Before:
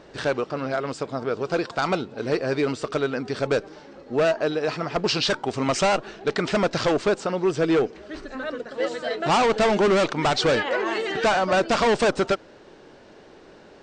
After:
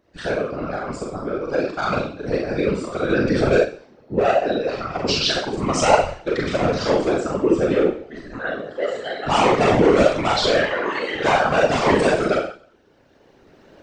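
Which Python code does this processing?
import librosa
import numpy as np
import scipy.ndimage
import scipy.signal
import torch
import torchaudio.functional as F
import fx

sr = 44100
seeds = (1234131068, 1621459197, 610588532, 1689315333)

y = fx.bin_expand(x, sr, power=1.5)
y = fx.recorder_agc(y, sr, target_db=-22.0, rise_db_per_s=9.5, max_gain_db=30)
y = fx.rev_schroeder(y, sr, rt60_s=0.5, comb_ms=29, drr_db=-2.0)
y = fx.whisperise(y, sr, seeds[0])
y = fx.env_flatten(y, sr, amount_pct=50, at=(3.09, 3.63), fade=0.02)
y = y * 10.0 ** (2.0 / 20.0)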